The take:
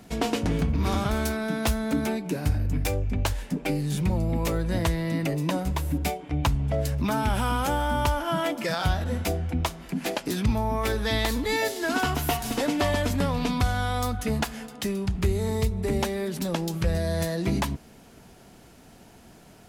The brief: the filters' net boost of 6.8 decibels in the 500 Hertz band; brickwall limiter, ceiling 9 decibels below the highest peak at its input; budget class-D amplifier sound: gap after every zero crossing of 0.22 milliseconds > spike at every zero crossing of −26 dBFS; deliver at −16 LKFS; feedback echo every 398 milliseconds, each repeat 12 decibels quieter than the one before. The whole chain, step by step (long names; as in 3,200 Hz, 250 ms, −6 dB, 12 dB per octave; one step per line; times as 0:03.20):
parametric band 500 Hz +8.5 dB
brickwall limiter −17 dBFS
repeating echo 398 ms, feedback 25%, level −12 dB
gap after every zero crossing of 0.22 ms
spike at every zero crossing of −26 dBFS
level +10.5 dB